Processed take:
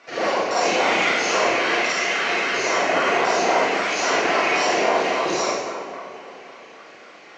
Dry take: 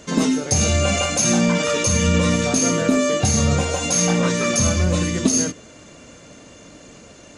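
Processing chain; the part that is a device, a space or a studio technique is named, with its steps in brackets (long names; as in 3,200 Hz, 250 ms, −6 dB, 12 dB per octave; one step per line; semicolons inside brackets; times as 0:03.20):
0:01.81–0:02.51: high-pass filter 480 Hz 12 dB per octave
tape delay 227 ms, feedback 68%, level −5.5 dB, low-pass 1,900 Hz
voice changer toy (ring modulator whose carrier an LFO sweeps 480 Hz, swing 80%, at 3.7 Hz; loudspeaker in its box 530–4,300 Hz, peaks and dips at 550 Hz −4 dB, 920 Hz −10 dB, 1,300 Hz −5 dB, 2,200 Hz +3 dB, 3,500 Hz −9 dB)
four-comb reverb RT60 0.84 s, combs from 33 ms, DRR −7 dB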